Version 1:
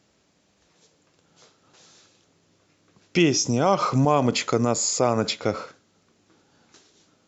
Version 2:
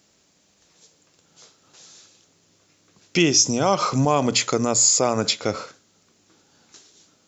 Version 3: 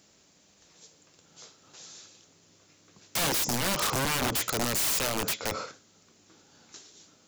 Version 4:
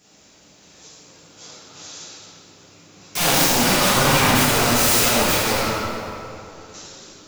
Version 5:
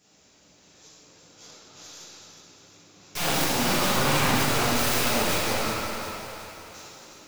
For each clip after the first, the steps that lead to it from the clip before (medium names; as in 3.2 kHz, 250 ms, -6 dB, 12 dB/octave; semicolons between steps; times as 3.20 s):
treble shelf 4.6 kHz +12 dB; hum notches 60/120 Hz
in parallel at 0 dB: compression 6:1, threshold -28 dBFS, peak gain reduction 15 dB; on the sum: integer overflow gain 16 dB; trim -6 dB
reverberation RT60 2.8 s, pre-delay 3 ms, DRR -12.5 dB
tracing distortion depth 0.14 ms; two-band feedback delay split 600 Hz, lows 87 ms, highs 365 ms, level -8.5 dB; trim -7 dB